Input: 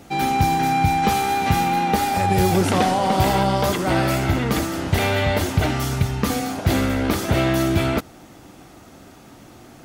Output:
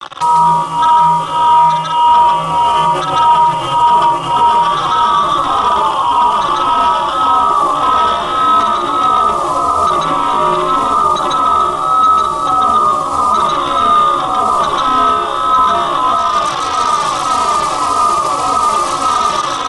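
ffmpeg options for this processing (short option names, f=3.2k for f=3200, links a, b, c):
-filter_complex "[0:a]highpass=43,aecho=1:1:7.5:0.69,dynaudnorm=f=200:g=7:m=13.5dB,lowpass=f=2.3k:t=q:w=0.5098,lowpass=f=2.3k:t=q:w=0.6013,lowpass=f=2.3k:t=q:w=0.9,lowpass=f=2.3k:t=q:w=2.563,afreqshift=-2700,asoftclip=type=tanh:threshold=-10dB,acrusher=bits=5:mix=0:aa=0.5,asoftclip=type=hard:threshold=-12.5dB,acrossover=split=350|1100[a][b][c];[a]acompressor=threshold=-49dB:ratio=4[d];[b]acompressor=threshold=-43dB:ratio=4[e];[c]acompressor=threshold=-28dB:ratio=4[f];[d][e][f]amix=inputs=3:normalize=0,aecho=1:1:72.89|215.7:0.891|0.316,asetrate=22050,aresample=44100,alimiter=level_in=24.5dB:limit=-1dB:release=50:level=0:latency=1,asplit=2[g][h];[h]adelay=3,afreqshift=-1.7[i];[g][i]amix=inputs=2:normalize=1,volume=-1dB"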